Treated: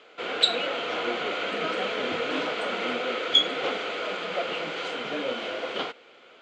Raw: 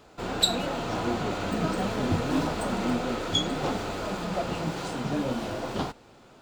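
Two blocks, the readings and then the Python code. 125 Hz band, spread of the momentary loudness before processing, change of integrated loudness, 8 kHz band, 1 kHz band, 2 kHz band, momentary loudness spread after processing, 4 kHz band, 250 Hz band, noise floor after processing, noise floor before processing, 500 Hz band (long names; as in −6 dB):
−17.5 dB, 7 LU, +1.5 dB, −8.5 dB, 0.0 dB, +6.5 dB, 10 LU, +5.5 dB, −8.0 dB, −53 dBFS, −54 dBFS, +2.0 dB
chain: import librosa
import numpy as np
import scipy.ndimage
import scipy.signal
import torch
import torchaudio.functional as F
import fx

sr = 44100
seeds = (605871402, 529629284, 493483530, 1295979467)

y = fx.cabinet(x, sr, low_hz=410.0, low_slope=12, high_hz=6100.0, hz=(480.0, 890.0, 1400.0, 2200.0, 3100.0, 5400.0), db=(7, -6, 5, 10, 10, -6))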